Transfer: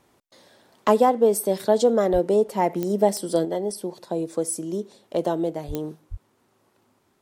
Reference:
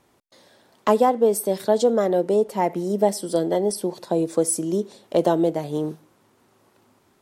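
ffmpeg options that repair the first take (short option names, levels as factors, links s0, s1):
-filter_complex "[0:a]adeclick=t=4,asplit=3[s0][s1][s2];[s0]afade=t=out:st=2.12:d=0.02[s3];[s1]highpass=f=140:w=0.5412,highpass=f=140:w=1.3066,afade=t=in:st=2.12:d=0.02,afade=t=out:st=2.24:d=0.02[s4];[s2]afade=t=in:st=2.24:d=0.02[s5];[s3][s4][s5]amix=inputs=3:normalize=0,asplit=3[s6][s7][s8];[s6]afade=t=out:st=5.67:d=0.02[s9];[s7]highpass=f=140:w=0.5412,highpass=f=140:w=1.3066,afade=t=in:st=5.67:d=0.02,afade=t=out:st=5.79:d=0.02[s10];[s8]afade=t=in:st=5.79:d=0.02[s11];[s9][s10][s11]amix=inputs=3:normalize=0,asplit=3[s12][s13][s14];[s12]afade=t=out:st=6.1:d=0.02[s15];[s13]highpass=f=140:w=0.5412,highpass=f=140:w=1.3066,afade=t=in:st=6.1:d=0.02,afade=t=out:st=6.22:d=0.02[s16];[s14]afade=t=in:st=6.22:d=0.02[s17];[s15][s16][s17]amix=inputs=3:normalize=0,asetnsamples=n=441:p=0,asendcmd='3.45 volume volume 5dB',volume=1"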